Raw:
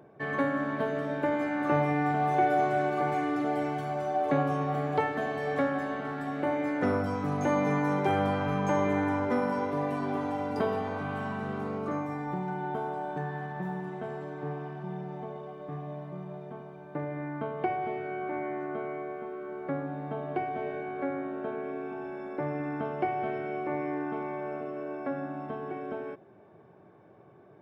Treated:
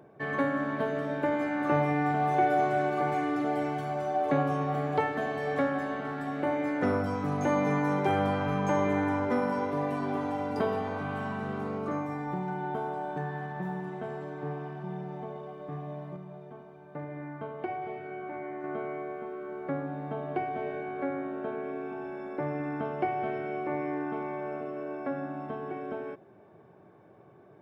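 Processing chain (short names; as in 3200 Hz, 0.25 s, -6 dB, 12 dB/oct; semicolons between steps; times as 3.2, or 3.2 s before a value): 16.16–18.64 flange 1 Hz, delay 0.3 ms, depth 3.1 ms, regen -68%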